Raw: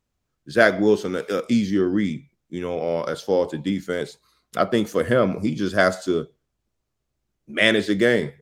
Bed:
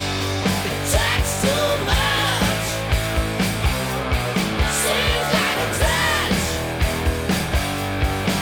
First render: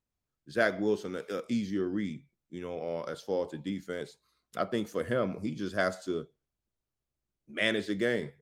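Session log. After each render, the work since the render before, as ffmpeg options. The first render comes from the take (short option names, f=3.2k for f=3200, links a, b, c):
-af "volume=-11dB"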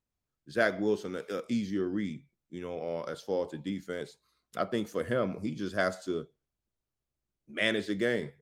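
-af anull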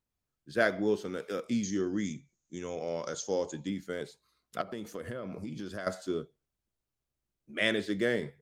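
-filter_complex "[0:a]asettb=1/sr,asplit=3[a][b][c];[a]atrim=end=1.634[d];[b]atrim=start=1.63:end=3.67,asetpts=PTS-STARTPTS,afade=t=in:d=0.004:c=qsin,afade=t=out:st=2.036:d=0.004:c=qsin,lowpass=f=6.6k:t=q:w=15[e];[c]atrim=start=3.666[f];[d][e]acrossfade=d=0.004:c1=hsin:c2=qsin[g];[g][f]acrossfade=d=0.004:c1=qsin:c2=hsin,asettb=1/sr,asplit=3[h][i][j];[h]atrim=end=4.614[k];[i]atrim=start=4.61:end=5.87,asetpts=PTS-STARTPTS,afade=t=in:d=0.004:c=qsin,afade=t=out:st=1.256:d=0.004:c=qsin,acompressor=threshold=-34dB:ratio=10:attack=3.2:release=140:knee=1:detection=peak[l];[j]atrim=start=5.866[m];[k][l]acrossfade=d=0.004:c1=hsin:c2=qsin[n];[n][m]acrossfade=d=0.004:c1=qsin:c2=hsin"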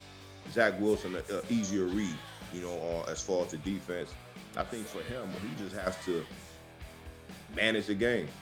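-filter_complex "[1:a]volume=-27.5dB[a];[0:a][a]amix=inputs=2:normalize=0"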